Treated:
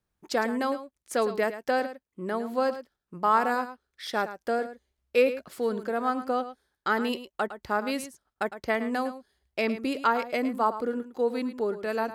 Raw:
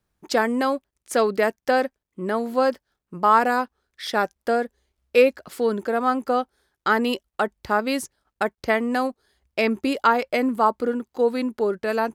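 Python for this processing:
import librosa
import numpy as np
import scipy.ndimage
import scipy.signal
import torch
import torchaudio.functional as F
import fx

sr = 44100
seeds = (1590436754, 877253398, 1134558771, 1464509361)

y = x + 10.0 ** (-12.5 / 20.0) * np.pad(x, (int(108 * sr / 1000.0), 0))[:len(x)]
y = y * 10.0 ** (-6.0 / 20.0)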